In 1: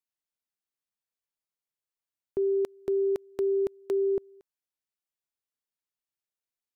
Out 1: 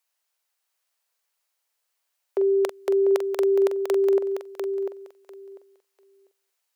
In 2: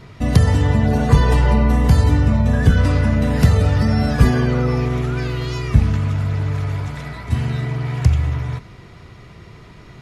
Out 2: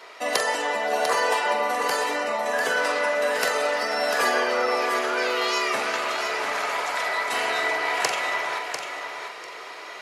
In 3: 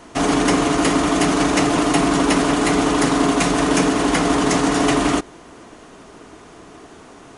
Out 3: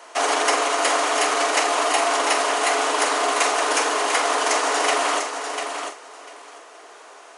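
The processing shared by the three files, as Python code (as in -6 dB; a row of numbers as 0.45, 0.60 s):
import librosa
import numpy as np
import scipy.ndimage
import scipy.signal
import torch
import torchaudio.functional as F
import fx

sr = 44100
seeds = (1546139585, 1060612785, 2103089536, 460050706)

y = scipy.signal.sosfilt(scipy.signal.butter(4, 510.0, 'highpass', fs=sr, output='sos'), x)
y = fx.notch(y, sr, hz=3500.0, q=27.0)
y = fx.rider(y, sr, range_db=5, speed_s=2.0)
y = fx.doubler(y, sr, ms=44.0, db=-9.5)
y = fx.echo_feedback(y, sr, ms=696, feedback_pct=16, wet_db=-7.0)
y = librosa.util.normalize(y) * 10.0 ** (-6 / 20.0)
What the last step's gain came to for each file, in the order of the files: +15.0, +4.0, 0.0 dB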